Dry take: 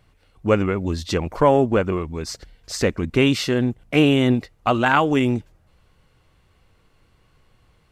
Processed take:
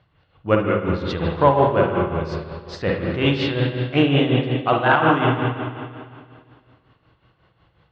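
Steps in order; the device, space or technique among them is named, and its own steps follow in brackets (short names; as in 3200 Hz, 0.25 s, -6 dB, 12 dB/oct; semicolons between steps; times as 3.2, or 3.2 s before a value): combo amplifier with spring reverb and tremolo (spring tank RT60 2.2 s, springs 50/56 ms, chirp 25 ms, DRR -1.5 dB; tremolo 5.5 Hz, depth 62%; speaker cabinet 79–3900 Hz, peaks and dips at 240 Hz -9 dB, 420 Hz -5 dB, 2300 Hz -6 dB); gain +2 dB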